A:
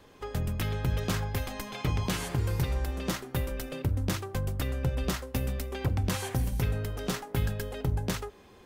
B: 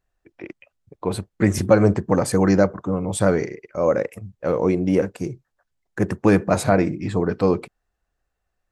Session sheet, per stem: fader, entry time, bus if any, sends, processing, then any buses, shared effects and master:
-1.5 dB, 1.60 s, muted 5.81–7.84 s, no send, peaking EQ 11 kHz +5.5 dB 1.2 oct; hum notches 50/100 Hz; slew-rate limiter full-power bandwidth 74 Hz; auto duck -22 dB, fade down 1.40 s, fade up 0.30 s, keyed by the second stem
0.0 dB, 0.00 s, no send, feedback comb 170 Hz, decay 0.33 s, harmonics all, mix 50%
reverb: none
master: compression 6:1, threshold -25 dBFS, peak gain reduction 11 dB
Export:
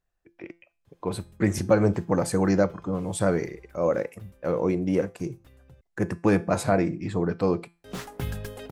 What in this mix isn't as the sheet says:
stem A: entry 1.60 s -> 0.85 s; master: missing compression 6:1, threshold -25 dBFS, peak gain reduction 11 dB

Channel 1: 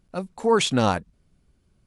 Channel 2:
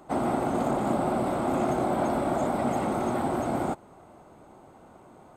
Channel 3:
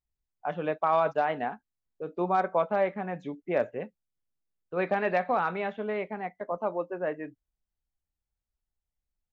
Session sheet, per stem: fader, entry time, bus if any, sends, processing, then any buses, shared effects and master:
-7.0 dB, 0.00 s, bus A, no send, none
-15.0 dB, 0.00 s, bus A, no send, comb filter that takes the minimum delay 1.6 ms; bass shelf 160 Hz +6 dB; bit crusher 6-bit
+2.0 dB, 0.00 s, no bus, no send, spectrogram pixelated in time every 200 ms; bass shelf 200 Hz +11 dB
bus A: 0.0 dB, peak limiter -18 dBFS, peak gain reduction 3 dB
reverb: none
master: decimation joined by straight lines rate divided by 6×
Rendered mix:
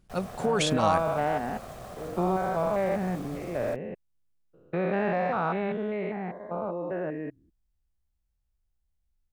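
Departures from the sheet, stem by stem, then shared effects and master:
stem 1 -7.0 dB -> 0.0 dB; master: missing decimation joined by straight lines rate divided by 6×

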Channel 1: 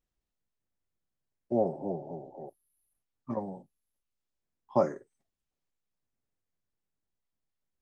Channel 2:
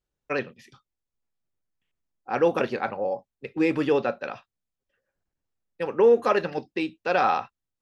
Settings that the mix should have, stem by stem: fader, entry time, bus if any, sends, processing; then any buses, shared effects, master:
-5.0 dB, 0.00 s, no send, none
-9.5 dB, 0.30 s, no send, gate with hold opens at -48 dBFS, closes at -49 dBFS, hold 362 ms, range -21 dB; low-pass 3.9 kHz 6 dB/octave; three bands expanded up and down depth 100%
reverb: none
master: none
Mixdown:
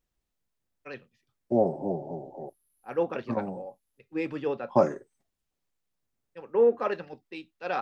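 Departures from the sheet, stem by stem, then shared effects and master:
stem 1 -5.0 dB -> +4.0 dB; stem 2: entry 0.30 s -> 0.55 s

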